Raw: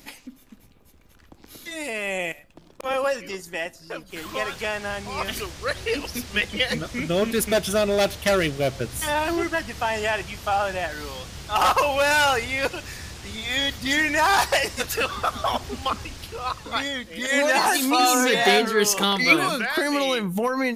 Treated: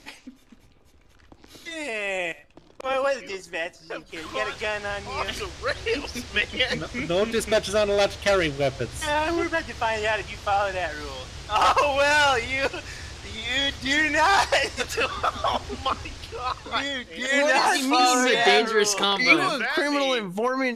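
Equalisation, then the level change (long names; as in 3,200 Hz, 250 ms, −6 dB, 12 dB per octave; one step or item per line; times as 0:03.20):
low-pass filter 7,200 Hz 12 dB per octave
parametric band 190 Hz −8 dB 0.48 octaves
0.0 dB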